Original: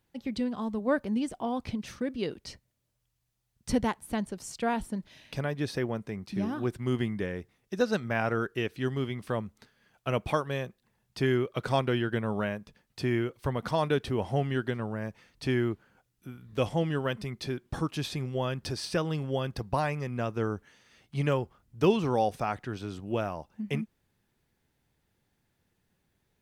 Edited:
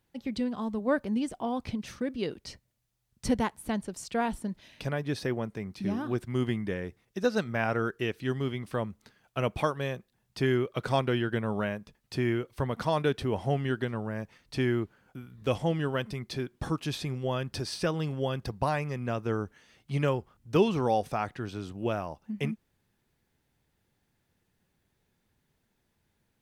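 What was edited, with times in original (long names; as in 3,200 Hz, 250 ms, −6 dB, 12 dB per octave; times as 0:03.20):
compress silence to 60%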